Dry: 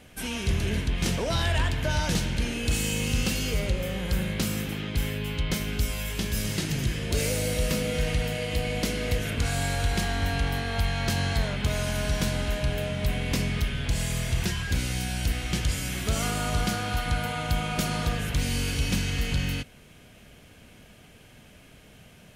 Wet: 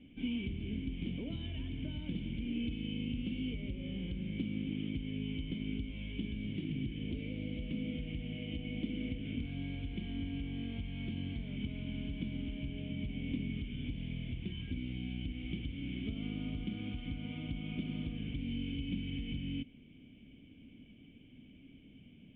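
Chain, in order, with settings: compression, threshold -29 dBFS, peak gain reduction 9 dB; cascade formant filter i; trim +4.5 dB

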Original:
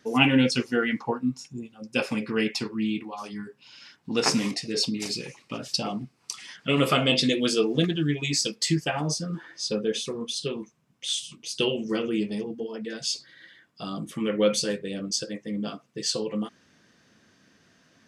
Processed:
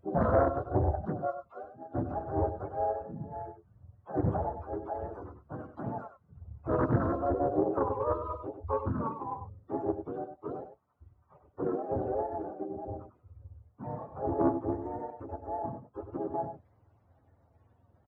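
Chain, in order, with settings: spectrum inverted on a logarithmic axis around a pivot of 420 Hz; harmony voices -12 st -16 dB, -4 st -1 dB, -3 st -16 dB; on a send: delay 97 ms -9 dB; on the sum: loudspeaker Doppler distortion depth 0.62 ms; trim -6 dB

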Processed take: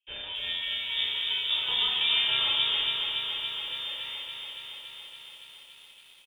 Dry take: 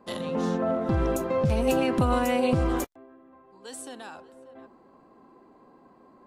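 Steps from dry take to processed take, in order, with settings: tracing distortion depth 0.29 ms; early reflections 30 ms -5.5 dB, 43 ms -12 dB, 75 ms -9.5 dB; gate with hold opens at -44 dBFS; bass shelf 370 Hz -10.5 dB; level-controlled noise filter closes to 1.7 kHz, open at -28.5 dBFS; distance through air 61 m; simulated room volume 2900 m³, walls furnished, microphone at 4.3 m; frequency inversion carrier 3.6 kHz; bit-crushed delay 282 ms, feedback 80%, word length 9-bit, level -5 dB; trim -6.5 dB

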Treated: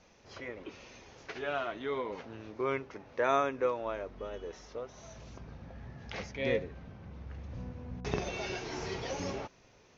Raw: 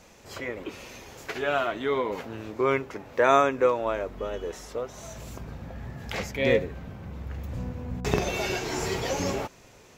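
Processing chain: steep low-pass 6.5 kHz 96 dB/octave; trim -8.5 dB

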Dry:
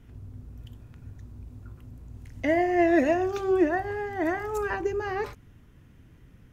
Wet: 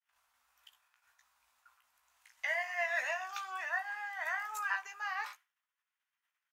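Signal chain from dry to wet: doubling 16 ms -6 dB; expander -39 dBFS; inverse Chebyshev high-pass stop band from 370 Hz, stop band 50 dB; trim -2 dB

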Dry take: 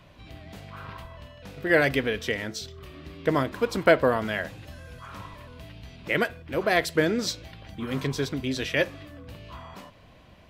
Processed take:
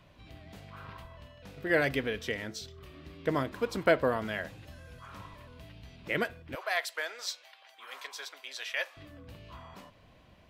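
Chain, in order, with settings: 6.55–8.97 s: high-pass 710 Hz 24 dB/octave; trim -6 dB

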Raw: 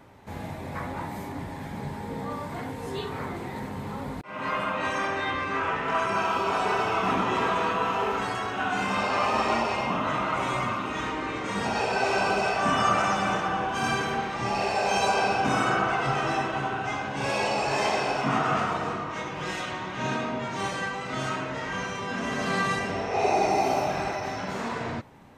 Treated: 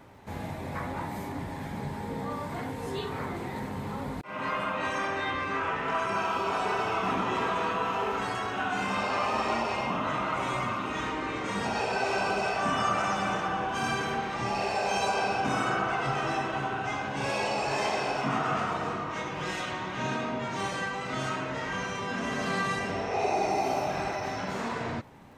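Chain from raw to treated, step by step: compression 1.5:1, threshold -31 dBFS, peak gain reduction 4.5 dB; crackle 77 per s -56 dBFS

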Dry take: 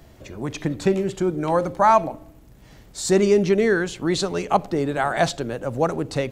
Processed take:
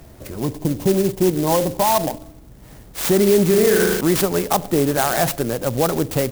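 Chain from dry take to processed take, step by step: 3.47–4.01 s: flutter echo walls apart 6.4 m, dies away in 0.81 s; peak limiter -13 dBFS, peak gain reduction 8.5 dB; 0.43–2.21 s: spectral selection erased 1.1–7 kHz; sampling jitter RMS 0.086 ms; trim +5.5 dB

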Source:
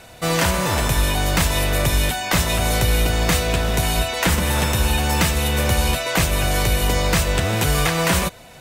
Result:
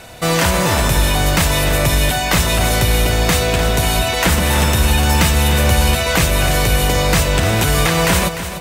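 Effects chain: in parallel at 0 dB: peak limiter -14.5 dBFS, peak gain reduction 8.5 dB; on the sum: bit-crushed delay 299 ms, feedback 35%, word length 7-bit, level -10.5 dB

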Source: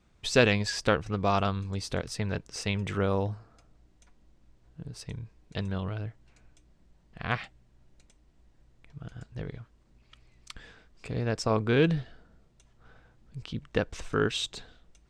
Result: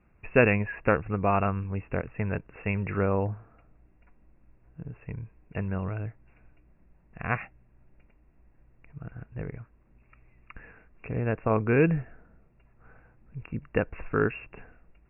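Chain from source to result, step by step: brick-wall FIR low-pass 2.8 kHz; trim +1.5 dB

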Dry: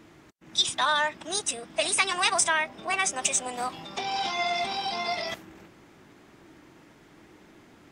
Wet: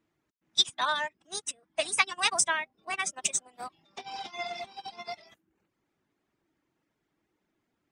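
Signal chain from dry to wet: reverb removal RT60 0.6 s; in parallel at -3 dB: level held to a coarse grid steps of 16 dB; on the sum: upward expansion 2.5:1, over -35 dBFS

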